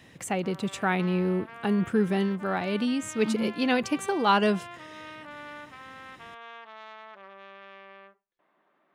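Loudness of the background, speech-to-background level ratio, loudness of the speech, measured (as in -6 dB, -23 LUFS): -44.0 LUFS, 17.0 dB, -27.0 LUFS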